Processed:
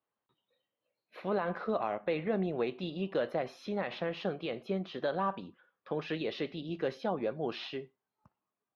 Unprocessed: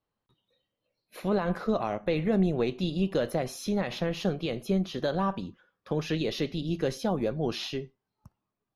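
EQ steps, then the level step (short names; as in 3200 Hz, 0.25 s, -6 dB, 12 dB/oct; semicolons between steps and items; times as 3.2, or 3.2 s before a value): HPF 590 Hz 6 dB/oct; air absorption 330 m; high shelf 8300 Hz +4 dB; +1.0 dB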